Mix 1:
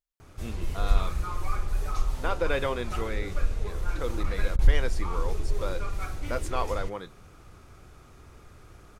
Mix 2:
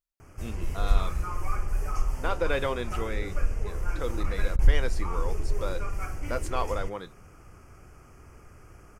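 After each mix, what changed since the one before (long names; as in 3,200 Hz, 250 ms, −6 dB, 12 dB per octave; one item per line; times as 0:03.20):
background: add Butterworth band-reject 3,800 Hz, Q 2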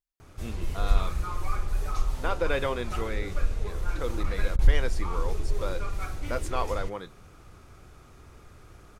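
background: remove Butterworth band-reject 3,800 Hz, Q 2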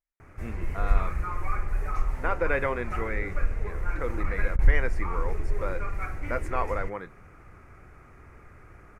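master: add high shelf with overshoot 2,700 Hz −9 dB, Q 3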